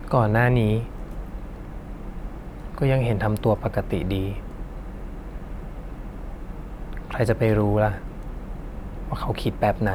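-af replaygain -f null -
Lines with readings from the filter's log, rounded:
track_gain = +5.1 dB
track_peak = 0.301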